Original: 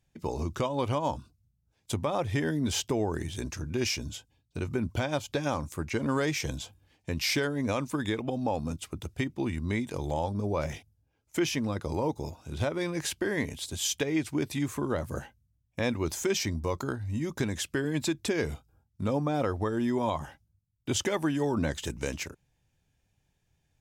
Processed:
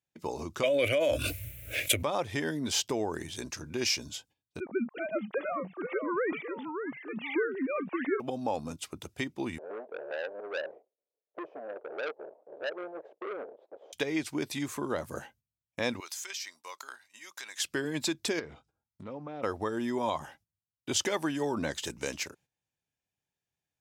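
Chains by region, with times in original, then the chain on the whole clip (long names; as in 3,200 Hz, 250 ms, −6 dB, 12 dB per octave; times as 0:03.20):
0:00.63–0:02.03: drawn EQ curve 110 Hz 0 dB, 190 Hz −22 dB, 270 Hz −3 dB, 400 Hz −5 dB, 600 Hz +7 dB, 880 Hz −26 dB, 1,400 Hz −4 dB, 2,300 Hz +12 dB, 4,900 Hz −12 dB, 12,000 Hz +7 dB + envelope flattener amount 100%
0:04.60–0:08.20: three sine waves on the formant tracks + high-frequency loss of the air 350 metres + delay with pitch and tempo change per echo 386 ms, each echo −2 semitones, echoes 2, each echo −6 dB
0:09.58–0:13.93: each half-wave held at its own peak + flat-topped band-pass 520 Hz, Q 2.2 + saturating transformer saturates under 1,600 Hz
0:16.00–0:17.60: high-pass filter 1,400 Hz + downward compressor 12 to 1, threshold −36 dBFS
0:18.39–0:19.43: treble cut that deepens with the level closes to 2,800 Hz, closed at −28.5 dBFS + downward compressor 3 to 1, threshold −37 dBFS + highs frequency-modulated by the lows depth 0.15 ms
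whole clip: noise gate −57 dBFS, range −12 dB; high-pass filter 340 Hz 6 dB per octave; dynamic equaliser 4,700 Hz, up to +4 dB, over −49 dBFS, Q 1.7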